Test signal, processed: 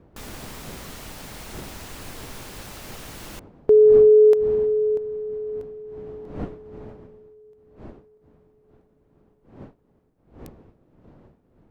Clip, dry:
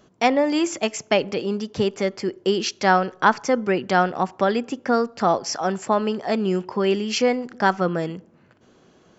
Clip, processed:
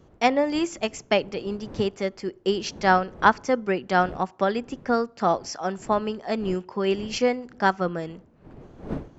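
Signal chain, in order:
wind on the microphone 340 Hz −38 dBFS
expander for the loud parts 1.5 to 1, over −27 dBFS

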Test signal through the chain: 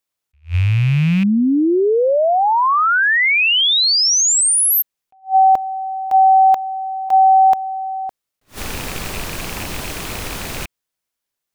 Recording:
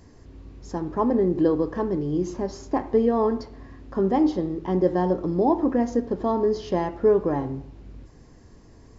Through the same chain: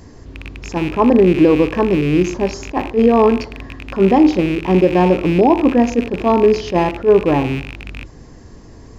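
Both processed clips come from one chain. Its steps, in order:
loose part that buzzes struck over −39 dBFS, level −28 dBFS
boost into a limiter +12 dB
level that may rise only so fast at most 290 dB per second
level −1.5 dB

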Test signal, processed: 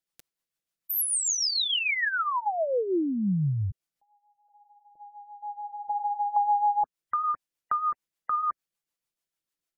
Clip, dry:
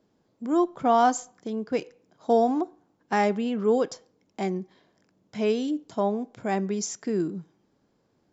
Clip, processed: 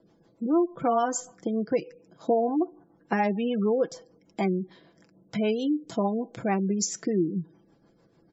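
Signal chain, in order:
rotating-speaker cabinet horn 6.7 Hz
comb filter 6 ms, depth 43%
downward compressor 2.5 to 1, threshold −33 dBFS
gate on every frequency bin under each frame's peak −30 dB strong
level +8 dB

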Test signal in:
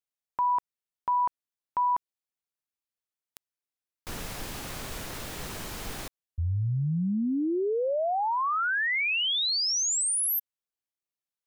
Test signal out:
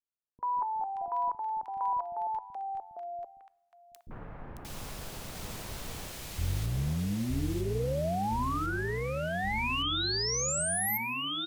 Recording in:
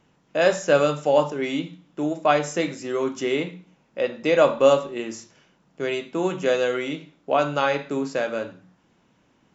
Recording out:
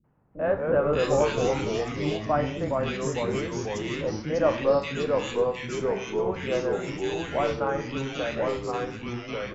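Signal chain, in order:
sub-octave generator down 1 octave, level −3 dB
three-band delay without the direct sound lows, mids, highs 40/580 ms, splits 320/1,700 Hz
coupled-rooms reverb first 0.75 s, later 2.7 s, from −26 dB, DRR 18.5 dB
delay with pitch and tempo change per echo 136 ms, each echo −2 semitones, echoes 3
level −5 dB

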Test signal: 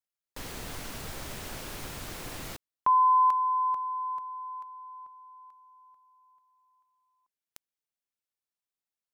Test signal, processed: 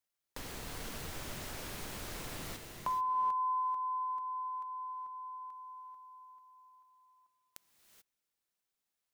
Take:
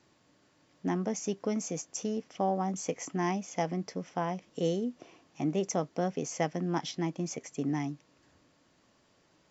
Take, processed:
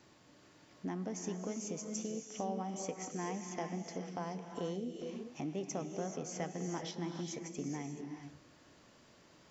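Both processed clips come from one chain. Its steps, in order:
downward compressor 2 to 1, threshold −51 dBFS
reverb whose tail is shaped and stops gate 460 ms rising, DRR 4.5 dB
level +3.5 dB

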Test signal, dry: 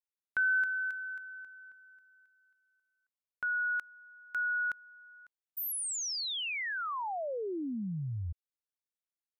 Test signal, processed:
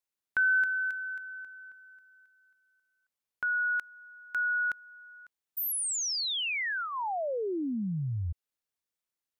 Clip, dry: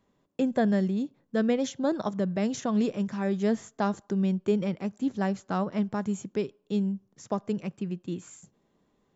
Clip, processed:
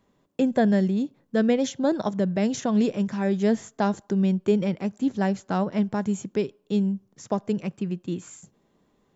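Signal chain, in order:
dynamic equaliser 1,200 Hz, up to −6 dB, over −54 dBFS, Q 5.5
level +4 dB

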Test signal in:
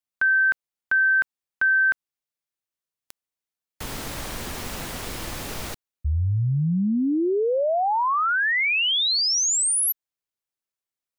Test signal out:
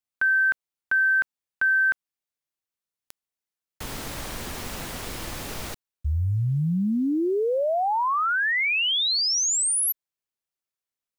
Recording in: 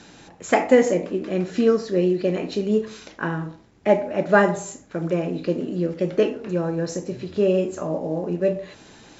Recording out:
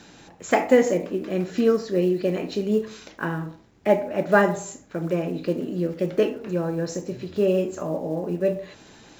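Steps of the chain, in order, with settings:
one scale factor per block 7 bits
level −1.5 dB

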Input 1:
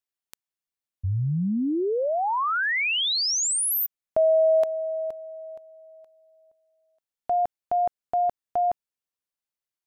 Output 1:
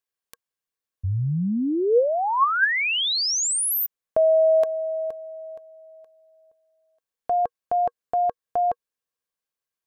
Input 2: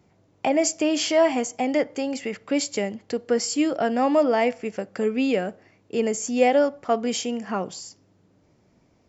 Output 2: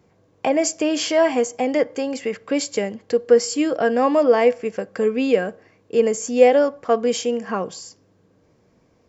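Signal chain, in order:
hollow resonant body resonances 480/1,100/1,600 Hz, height 9 dB, ringing for 45 ms
level +1 dB

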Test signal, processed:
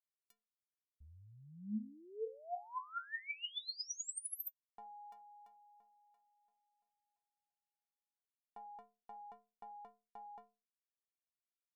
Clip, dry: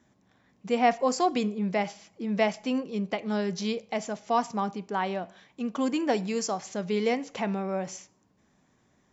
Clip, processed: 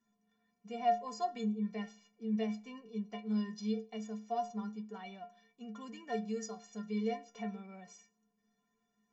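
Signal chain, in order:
stiff-string resonator 210 Hz, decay 0.36 s, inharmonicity 0.03

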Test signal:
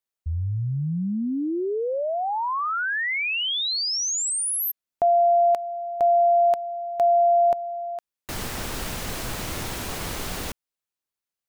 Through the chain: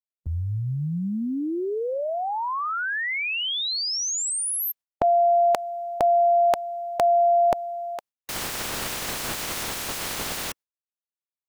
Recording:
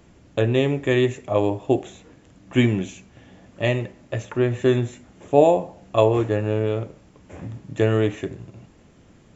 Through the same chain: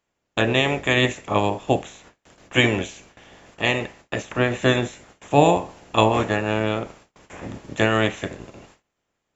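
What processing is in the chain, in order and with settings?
ceiling on every frequency bin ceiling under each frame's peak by 18 dB
noise gate with hold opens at −37 dBFS, closes at −43 dBFS, hold 71 ms, range −26 dB

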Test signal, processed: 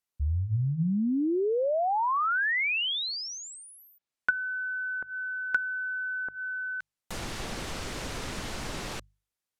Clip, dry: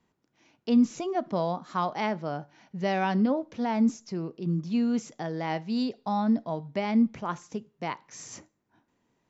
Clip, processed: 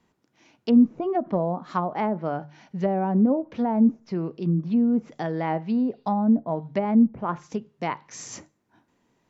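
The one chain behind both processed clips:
mains-hum notches 50/100/150 Hz
treble cut that deepens with the level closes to 670 Hz, closed at −23.5 dBFS
level +5 dB

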